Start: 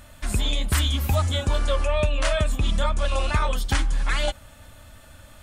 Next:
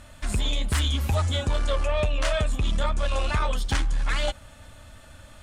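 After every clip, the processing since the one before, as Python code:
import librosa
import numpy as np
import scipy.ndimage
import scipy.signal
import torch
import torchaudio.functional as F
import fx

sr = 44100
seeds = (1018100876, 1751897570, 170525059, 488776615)

y = scipy.signal.sosfilt(scipy.signal.butter(2, 10000.0, 'lowpass', fs=sr, output='sos'), x)
y = 10.0 ** (-16.5 / 20.0) * np.tanh(y / 10.0 ** (-16.5 / 20.0))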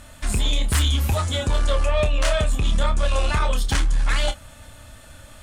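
y = fx.high_shelf(x, sr, hz=8500.0, db=8.0)
y = fx.doubler(y, sr, ms=28.0, db=-9.5)
y = y * 10.0 ** (2.5 / 20.0)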